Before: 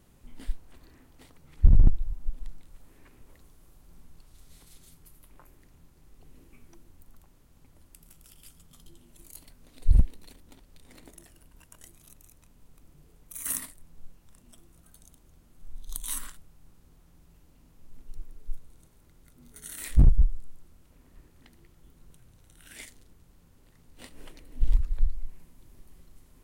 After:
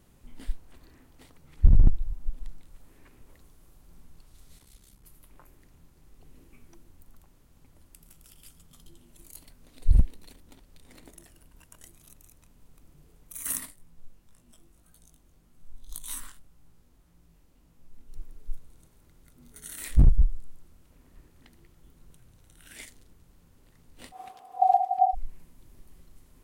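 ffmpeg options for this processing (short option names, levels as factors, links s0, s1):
-filter_complex "[0:a]asplit=3[s0][s1][s2];[s0]afade=t=out:st=4.58:d=0.02[s3];[s1]aeval=exprs='val(0)*sin(2*PI*33*n/s)':c=same,afade=t=in:st=4.58:d=0.02,afade=t=out:st=5.03:d=0.02[s4];[s2]afade=t=in:st=5.03:d=0.02[s5];[s3][s4][s5]amix=inputs=3:normalize=0,asplit=3[s6][s7][s8];[s6]afade=t=out:st=13.7:d=0.02[s9];[s7]flanger=delay=17:depth=4.6:speed=1.8,afade=t=in:st=13.7:d=0.02,afade=t=out:st=18.11:d=0.02[s10];[s8]afade=t=in:st=18.11:d=0.02[s11];[s9][s10][s11]amix=inputs=3:normalize=0,asplit=3[s12][s13][s14];[s12]afade=t=out:st=24.11:d=0.02[s15];[s13]aeval=exprs='val(0)*sin(2*PI*750*n/s)':c=same,afade=t=in:st=24.11:d=0.02,afade=t=out:st=25.13:d=0.02[s16];[s14]afade=t=in:st=25.13:d=0.02[s17];[s15][s16][s17]amix=inputs=3:normalize=0"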